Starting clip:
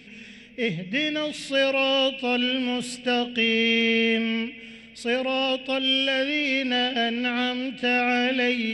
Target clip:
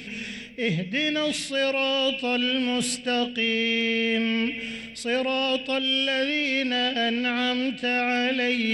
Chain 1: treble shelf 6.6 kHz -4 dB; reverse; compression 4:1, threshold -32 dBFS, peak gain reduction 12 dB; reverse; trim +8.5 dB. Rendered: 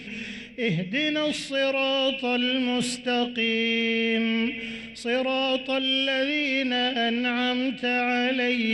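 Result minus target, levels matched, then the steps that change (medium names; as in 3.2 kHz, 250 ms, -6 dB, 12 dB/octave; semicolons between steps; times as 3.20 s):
8 kHz band -4.5 dB
change: treble shelf 6.6 kHz +6 dB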